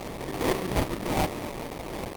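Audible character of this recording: a quantiser's noise floor 6-bit, dither triangular; tremolo saw up 2.4 Hz, depth 35%; aliases and images of a low sample rate 1.5 kHz, jitter 20%; Opus

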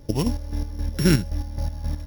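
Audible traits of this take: a buzz of ramps at a fixed pitch in blocks of 8 samples; chopped level 3.8 Hz, depth 60%, duty 40%

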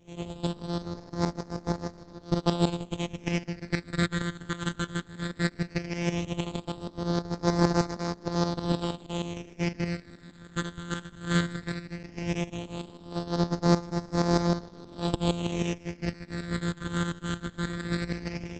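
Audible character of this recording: a buzz of ramps at a fixed pitch in blocks of 256 samples; tremolo saw up 6.4 Hz, depth 70%; phasing stages 8, 0.16 Hz, lowest notch 720–2800 Hz; Opus

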